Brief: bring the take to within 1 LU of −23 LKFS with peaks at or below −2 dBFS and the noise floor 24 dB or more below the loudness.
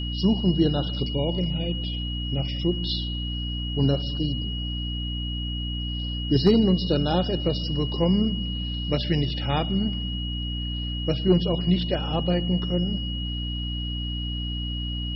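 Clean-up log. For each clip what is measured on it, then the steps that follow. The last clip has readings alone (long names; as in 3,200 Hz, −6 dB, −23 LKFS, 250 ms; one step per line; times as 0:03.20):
mains hum 60 Hz; hum harmonics up to 300 Hz; level of the hum −27 dBFS; interfering tone 2,900 Hz; level of the tone −33 dBFS; integrated loudness −25.5 LKFS; sample peak −8.0 dBFS; target loudness −23.0 LKFS
→ hum removal 60 Hz, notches 5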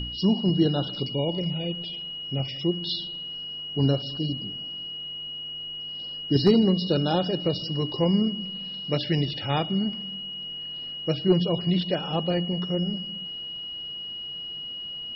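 mains hum none found; interfering tone 2,900 Hz; level of the tone −33 dBFS
→ notch filter 2,900 Hz, Q 30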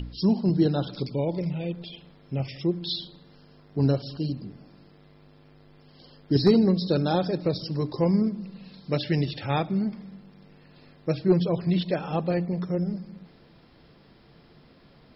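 interfering tone none found; integrated loudness −26.5 LKFS; sample peak −8.5 dBFS; target loudness −23.0 LKFS
→ level +3.5 dB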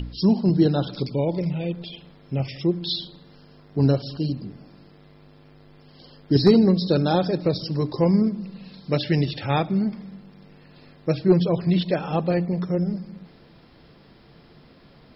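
integrated loudness −23.0 LKFS; sample peak −5.0 dBFS; background noise floor −52 dBFS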